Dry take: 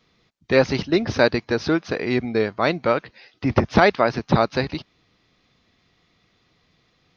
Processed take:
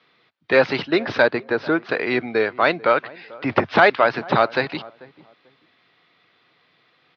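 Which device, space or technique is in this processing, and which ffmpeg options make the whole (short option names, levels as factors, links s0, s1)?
overdrive pedal into a guitar cabinet: -filter_complex "[0:a]asplit=2[s0][s1];[s1]highpass=f=720:p=1,volume=3.98,asoftclip=type=tanh:threshold=0.841[s2];[s0][s2]amix=inputs=2:normalize=0,lowpass=f=4200:p=1,volume=0.501,highpass=f=120:w=0.5412,highpass=f=120:w=1.3066,highpass=82,equalizer=f=94:t=q:w=4:g=6,equalizer=f=200:t=q:w=4:g=-5,equalizer=f=1500:t=q:w=4:g=3,lowpass=f=4200:w=0.5412,lowpass=f=4200:w=1.3066,asettb=1/sr,asplit=3[s3][s4][s5];[s3]atrim=end=1.224[s6];[s4]atrim=start=1.22:end=1.89,asetpts=PTS-STARTPTS,afade=t=in:d=0.004:c=qsin,afade=t=out:st=0.666:d=0.004:c=qsin,highshelf=f=2100:g=-9[s7];[s5]atrim=start=1.886[s8];[s6][s7]acrossfade=d=0.004:c1=hsin:c2=qsin[s9];[s9][s8]acrossfade=d=0.004:c1=qsin:c2=hsin,asplit=2[s10][s11];[s11]adelay=441,lowpass=f=970:p=1,volume=0.1,asplit=2[s12][s13];[s13]adelay=441,lowpass=f=970:p=1,volume=0.24[s14];[s10][s12][s14]amix=inputs=3:normalize=0,volume=0.891"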